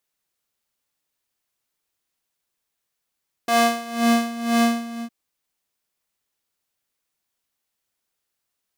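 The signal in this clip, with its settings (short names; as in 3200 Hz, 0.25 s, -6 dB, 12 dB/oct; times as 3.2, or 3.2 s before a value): synth patch with tremolo A#3, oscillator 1 square, oscillator 2 saw, interval 0 st, detune 20 cents, sub -28.5 dB, filter highpass, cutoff 200 Hz, Q 1.5, filter envelope 1.5 oct, filter decay 0.67 s, attack 4.7 ms, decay 0.50 s, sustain -4 dB, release 0.31 s, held 1.30 s, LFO 2 Hz, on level 16.5 dB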